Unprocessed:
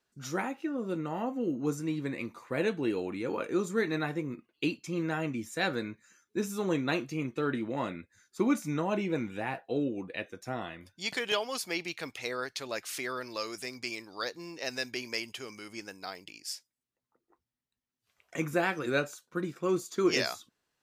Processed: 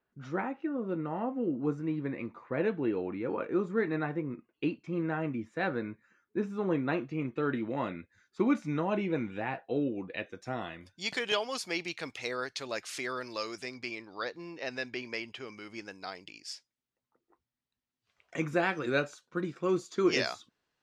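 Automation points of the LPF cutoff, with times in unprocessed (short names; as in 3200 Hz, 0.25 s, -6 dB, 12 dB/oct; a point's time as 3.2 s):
6.94 s 1900 Hz
7.66 s 3400 Hz
9.98 s 3400 Hz
10.72 s 7700 Hz
13.32 s 7700 Hz
13.95 s 3200 Hz
15.33 s 3200 Hz
16.09 s 5400 Hz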